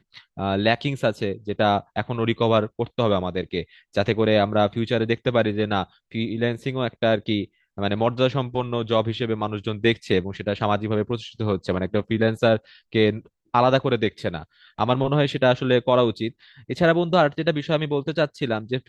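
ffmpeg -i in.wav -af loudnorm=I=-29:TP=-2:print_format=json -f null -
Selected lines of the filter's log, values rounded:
"input_i" : "-23.0",
"input_tp" : "-4.2",
"input_lra" : "2.7",
"input_thresh" : "-33.2",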